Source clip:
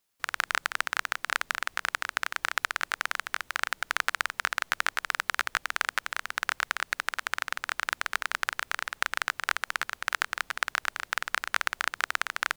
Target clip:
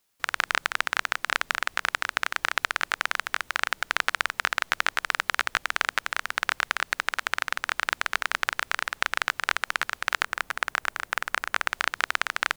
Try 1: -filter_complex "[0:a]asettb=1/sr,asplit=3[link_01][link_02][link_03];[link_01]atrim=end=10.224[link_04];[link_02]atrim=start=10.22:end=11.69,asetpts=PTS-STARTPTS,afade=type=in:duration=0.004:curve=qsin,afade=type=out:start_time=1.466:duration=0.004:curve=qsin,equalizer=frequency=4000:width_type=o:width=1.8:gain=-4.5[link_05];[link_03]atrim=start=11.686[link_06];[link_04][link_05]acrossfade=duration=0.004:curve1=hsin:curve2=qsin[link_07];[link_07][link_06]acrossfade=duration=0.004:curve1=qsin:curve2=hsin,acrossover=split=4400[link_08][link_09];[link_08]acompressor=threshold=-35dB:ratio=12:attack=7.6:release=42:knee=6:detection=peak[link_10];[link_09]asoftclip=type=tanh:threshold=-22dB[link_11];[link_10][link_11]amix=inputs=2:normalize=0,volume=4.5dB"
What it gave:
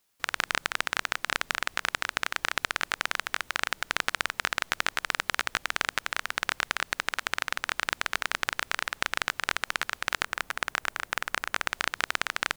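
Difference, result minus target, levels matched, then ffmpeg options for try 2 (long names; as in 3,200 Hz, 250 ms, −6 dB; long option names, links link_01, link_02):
downward compressor: peak gain reduction +7.5 dB
-filter_complex "[0:a]asettb=1/sr,asplit=3[link_01][link_02][link_03];[link_01]atrim=end=10.224[link_04];[link_02]atrim=start=10.22:end=11.69,asetpts=PTS-STARTPTS,afade=type=in:duration=0.004:curve=qsin,afade=type=out:start_time=1.466:duration=0.004:curve=qsin,equalizer=frequency=4000:width_type=o:width=1.8:gain=-4.5[link_05];[link_03]atrim=start=11.686[link_06];[link_04][link_05]acrossfade=duration=0.004:curve1=hsin:curve2=qsin[link_07];[link_07][link_06]acrossfade=duration=0.004:curve1=qsin:curve2=hsin,acrossover=split=4400[link_08][link_09];[link_08]acompressor=threshold=-27dB:ratio=12:attack=7.6:release=42:knee=6:detection=peak[link_10];[link_09]asoftclip=type=tanh:threshold=-22dB[link_11];[link_10][link_11]amix=inputs=2:normalize=0,volume=4.5dB"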